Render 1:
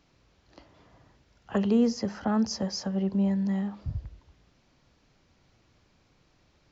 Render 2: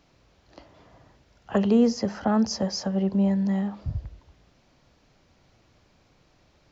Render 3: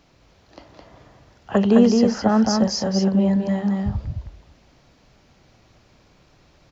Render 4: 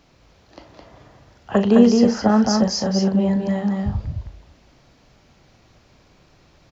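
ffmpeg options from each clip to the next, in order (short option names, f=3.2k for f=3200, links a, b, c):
-af "equalizer=f=640:w=1.8:g=3.5,volume=3dB"
-af "aecho=1:1:213:0.668,volume=4.5dB"
-filter_complex "[0:a]asplit=2[a][b];[b]adelay=38,volume=-12dB[c];[a][c]amix=inputs=2:normalize=0,volume=1dB"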